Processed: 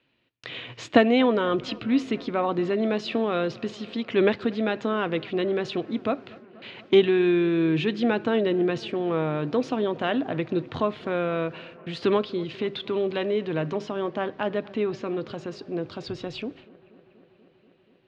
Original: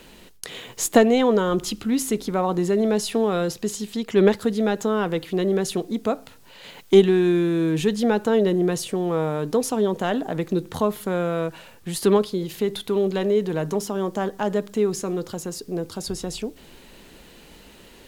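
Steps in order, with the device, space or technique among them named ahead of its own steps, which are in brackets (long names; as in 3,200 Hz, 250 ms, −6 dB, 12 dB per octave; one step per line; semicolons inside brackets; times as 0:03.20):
0:14.10–0:15.26: low-pass filter 5,600 Hz 12 dB per octave
noise gate with hold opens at −34 dBFS
guitar cabinet (loudspeaker in its box 100–3,900 Hz, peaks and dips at 120 Hz +10 dB, 190 Hz −10 dB, 280 Hz +3 dB, 430 Hz −6 dB, 850 Hz −5 dB, 2,500 Hz +5 dB)
bucket-brigade delay 241 ms, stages 4,096, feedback 79%, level −23 dB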